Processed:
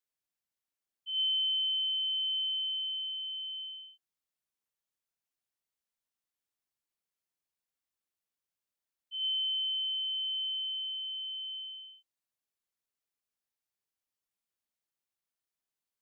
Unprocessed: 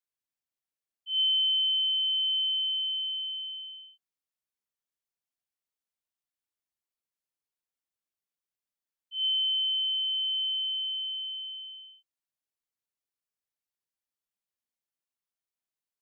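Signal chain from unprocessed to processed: dynamic EQ 2900 Hz, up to -5 dB, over -38 dBFS

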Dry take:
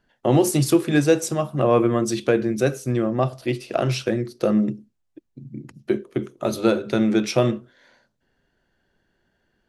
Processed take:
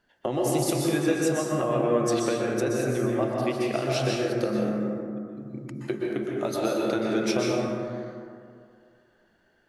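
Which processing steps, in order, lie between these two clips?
low shelf 190 Hz -9 dB; compressor, threshold -26 dBFS, peak gain reduction 13 dB; reverb RT60 2.3 s, pre-delay 0.113 s, DRR -3 dB

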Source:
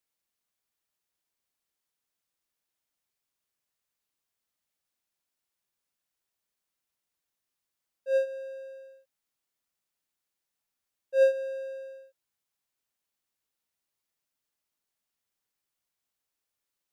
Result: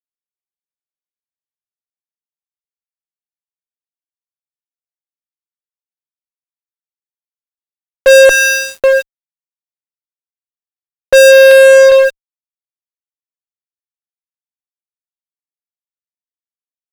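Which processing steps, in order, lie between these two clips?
8.29–8.84 steep high-pass 1200 Hz 96 dB/oct; 11.51–11.92 gate with hold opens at -32 dBFS; fuzz box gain 49 dB, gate -59 dBFS; maximiser +20.5 dB; gain -1 dB

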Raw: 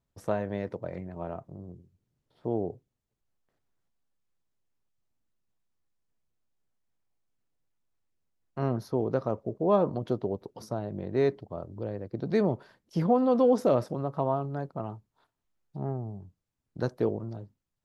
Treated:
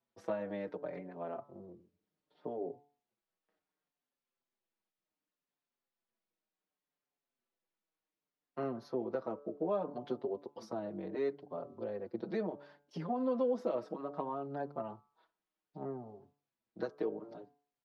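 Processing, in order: de-hum 144.2 Hz, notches 11; compressor 3:1, threshold -31 dBFS, peak gain reduction 10 dB; three-band isolator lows -23 dB, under 200 Hz, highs -17 dB, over 5100 Hz; endless flanger 5.5 ms -0.67 Hz; gain +1 dB

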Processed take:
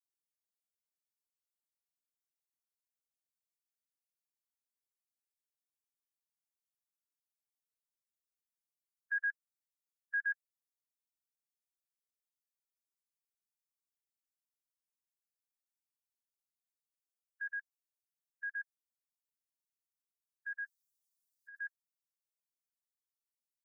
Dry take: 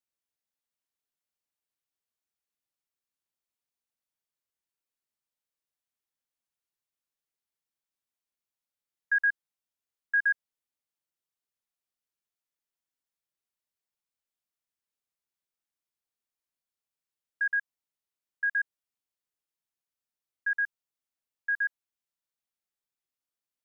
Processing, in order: per-bin expansion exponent 2; 20.64–21.59 negative-ratio compressor -43 dBFS, ratio -1; bell 1500 Hz -11 dB 2.5 oct; gain +2.5 dB

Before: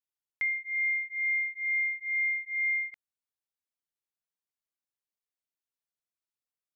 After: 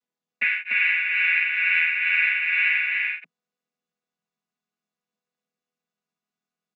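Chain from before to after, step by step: chord vocoder major triad, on E3; on a send: echo 0.293 s -3 dB; on the sum: gain +7 dB

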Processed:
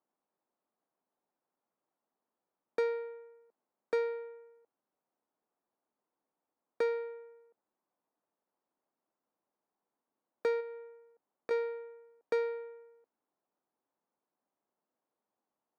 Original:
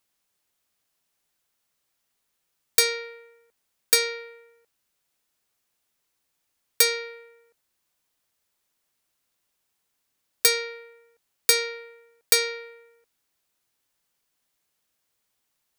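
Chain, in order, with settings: Chebyshev band-pass 230–920 Hz, order 2; 10.6–11.51 compressor 4:1, threshold -40 dBFS, peak gain reduction 10.5 dB

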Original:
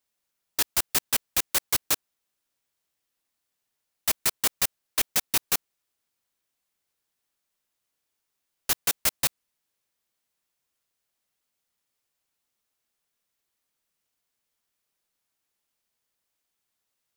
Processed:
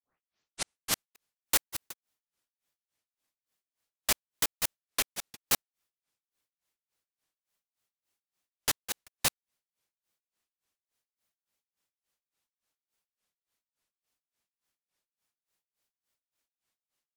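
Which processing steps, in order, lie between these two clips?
tape start at the beginning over 1.32 s; grains 0.228 s, grains 3.5/s, spray 15 ms, pitch spread up and down by 0 st; shaped vibrato saw up 4.7 Hz, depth 160 cents

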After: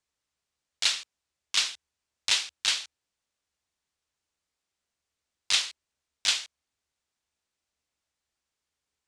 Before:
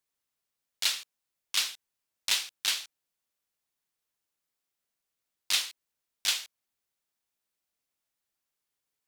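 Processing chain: LPF 8500 Hz 24 dB/oct; bell 72 Hz +14.5 dB 0.42 oct; gain +3 dB

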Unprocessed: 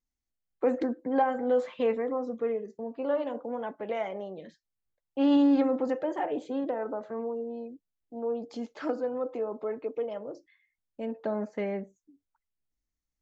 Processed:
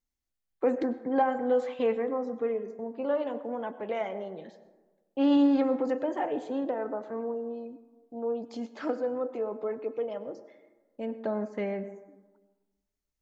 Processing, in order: plate-style reverb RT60 1.3 s, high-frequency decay 0.4×, pre-delay 85 ms, DRR 14 dB

